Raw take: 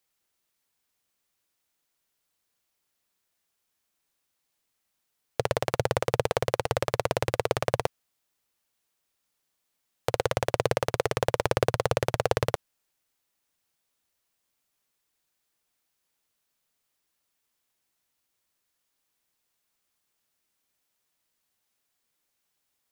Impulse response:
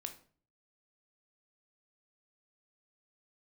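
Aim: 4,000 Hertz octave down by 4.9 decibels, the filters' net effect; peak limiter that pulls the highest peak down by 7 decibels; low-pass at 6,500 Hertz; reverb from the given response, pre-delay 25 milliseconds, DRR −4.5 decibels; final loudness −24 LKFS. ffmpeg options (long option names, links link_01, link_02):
-filter_complex "[0:a]lowpass=6500,equalizer=frequency=4000:width_type=o:gain=-6,alimiter=limit=-12.5dB:level=0:latency=1,asplit=2[link_01][link_02];[1:a]atrim=start_sample=2205,adelay=25[link_03];[link_02][link_03]afir=irnorm=-1:irlink=0,volume=7.5dB[link_04];[link_01][link_04]amix=inputs=2:normalize=0,volume=3dB"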